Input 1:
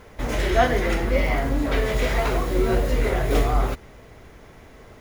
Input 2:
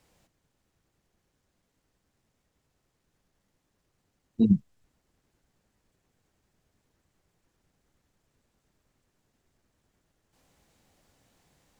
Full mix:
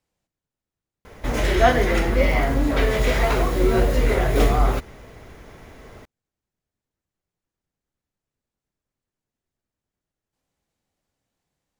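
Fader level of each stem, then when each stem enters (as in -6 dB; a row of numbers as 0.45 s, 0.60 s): +2.5 dB, -13.5 dB; 1.05 s, 0.00 s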